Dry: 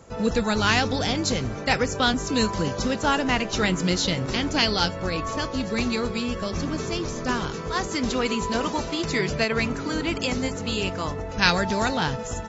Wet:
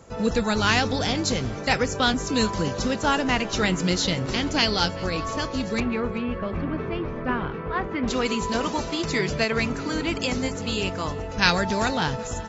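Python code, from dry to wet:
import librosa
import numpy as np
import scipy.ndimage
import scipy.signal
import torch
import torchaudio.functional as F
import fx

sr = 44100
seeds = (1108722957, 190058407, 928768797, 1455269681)

y = fx.lowpass(x, sr, hz=2500.0, slope=24, at=(5.8, 8.08))
y = fx.echo_thinned(y, sr, ms=384, feedback_pct=33, hz=420.0, wet_db=-22.0)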